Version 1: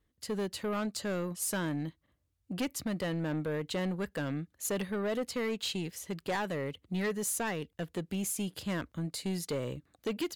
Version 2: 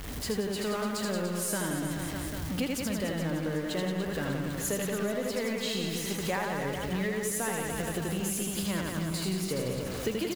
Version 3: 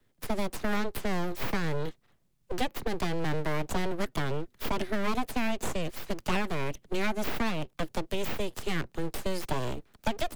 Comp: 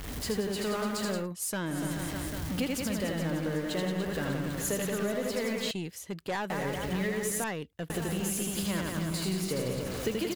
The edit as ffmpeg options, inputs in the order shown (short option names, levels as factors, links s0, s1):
-filter_complex "[0:a]asplit=3[s0][s1][s2];[1:a]asplit=4[s3][s4][s5][s6];[s3]atrim=end=1.28[s7];[s0]atrim=start=1.12:end=1.81[s8];[s4]atrim=start=1.65:end=5.712[s9];[s1]atrim=start=5.708:end=6.502[s10];[s5]atrim=start=6.498:end=7.442[s11];[s2]atrim=start=7.438:end=7.902[s12];[s6]atrim=start=7.898[s13];[s7][s8]acrossfade=d=0.16:c1=tri:c2=tri[s14];[s14][s9]acrossfade=d=0.16:c1=tri:c2=tri[s15];[s15][s10]acrossfade=d=0.004:c1=hsin:c2=hsin[s16];[s16][s11]acrossfade=d=0.004:c1=hsin:c2=hsin[s17];[s17][s12]acrossfade=d=0.004:c1=hsin:c2=hsin[s18];[s18][s13]acrossfade=d=0.004:c1=hsin:c2=hsin"